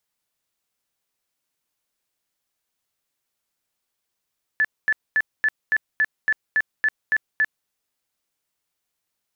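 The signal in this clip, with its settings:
tone bursts 1,740 Hz, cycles 80, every 0.28 s, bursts 11, −15.5 dBFS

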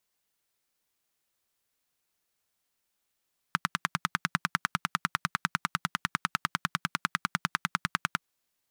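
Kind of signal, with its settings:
pulse-train model of a single-cylinder engine, steady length 4.68 s, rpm 1,200, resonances 170/1,300 Hz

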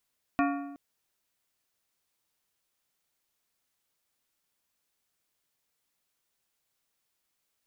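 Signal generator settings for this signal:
struck metal plate, length 0.37 s, lowest mode 282 Hz, modes 7, decay 1.08 s, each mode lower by 3 dB, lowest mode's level −23 dB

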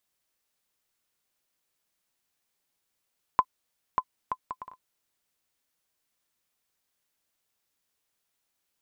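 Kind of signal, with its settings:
bouncing ball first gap 0.59 s, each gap 0.57, 1,020 Hz, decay 58 ms −8.5 dBFS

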